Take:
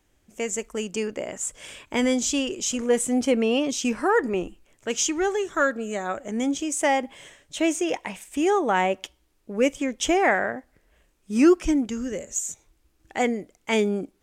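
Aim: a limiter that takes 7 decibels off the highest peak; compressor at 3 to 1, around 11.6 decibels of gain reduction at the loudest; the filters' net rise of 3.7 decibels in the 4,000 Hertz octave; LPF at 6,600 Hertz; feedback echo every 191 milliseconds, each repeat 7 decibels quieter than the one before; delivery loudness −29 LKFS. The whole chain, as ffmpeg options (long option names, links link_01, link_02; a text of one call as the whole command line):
ffmpeg -i in.wav -af "lowpass=6600,equalizer=frequency=4000:width_type=o:gain=6,acompressor=threshold=-28dB:ratio=3,alimiter=limit=-21.5dB:level=0:latency=1,aecho=1:1:191|382|573|764|955:0.447|0.201|0.0905|0.0407|0.0183,volume=2dB" out.wav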